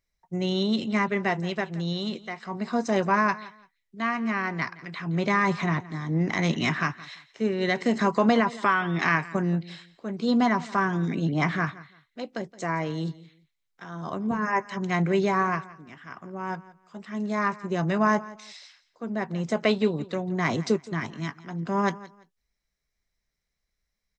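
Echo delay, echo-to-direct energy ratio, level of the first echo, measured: 170 ms, -19.0 dB, -19.0 dB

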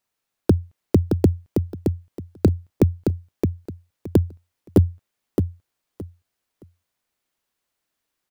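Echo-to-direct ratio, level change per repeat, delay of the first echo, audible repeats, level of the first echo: -5.0 dB, -13.5 dB, 619 ms, 3, -5.0 dB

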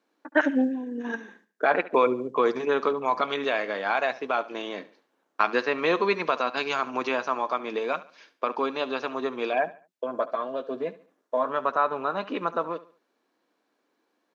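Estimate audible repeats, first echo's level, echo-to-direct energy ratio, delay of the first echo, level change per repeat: 2, -17.5 dB, -17.0 dB, 71 ms, -9.0 dB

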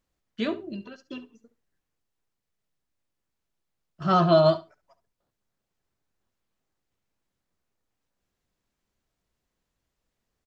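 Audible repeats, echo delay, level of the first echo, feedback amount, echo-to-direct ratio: 2, 69 ms, -16.0 dB, 15%, -16.0 dB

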